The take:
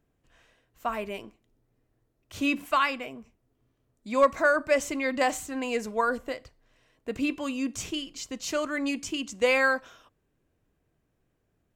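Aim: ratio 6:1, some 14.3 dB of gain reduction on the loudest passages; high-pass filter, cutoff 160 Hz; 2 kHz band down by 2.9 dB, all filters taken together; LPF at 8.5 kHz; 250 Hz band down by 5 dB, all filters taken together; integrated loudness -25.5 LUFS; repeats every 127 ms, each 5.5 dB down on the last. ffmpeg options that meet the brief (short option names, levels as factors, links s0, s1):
-af "highpass=160,lowpass=8500,equalizer=f=250:t=o:g=-5,equalizer=f=2000:t=o:g=-4,acompressor=threshold=0.0224:ratio=6,aecho=1:1:127|254|381|508|635|762|889:0.531|0.281|0.149|0.079|0.0419|0.0222|0.0118,volume=3.76"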